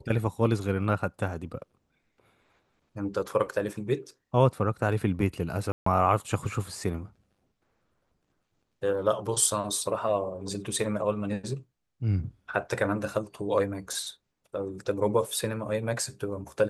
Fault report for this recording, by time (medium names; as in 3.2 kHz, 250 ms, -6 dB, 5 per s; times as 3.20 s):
5.72–5.86 s: dropout 144 ms